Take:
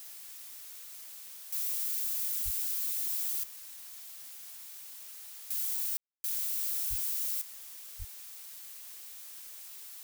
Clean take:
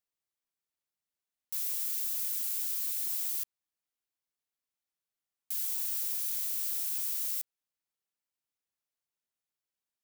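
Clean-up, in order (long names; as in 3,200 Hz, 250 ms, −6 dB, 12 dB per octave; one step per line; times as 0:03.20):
0:02.44–0:02.56: high-pass filter 140 Hz 24 dB per octave
0:06.89–0:07.01: high-pass filter 140 Hz 24 dB per octave
0:07.98–0:08.10: high-pass filter 140 Hz 24 dB per octave
ambience match 0:05.97–0:06.24
noise reduction from a noise print 30 dB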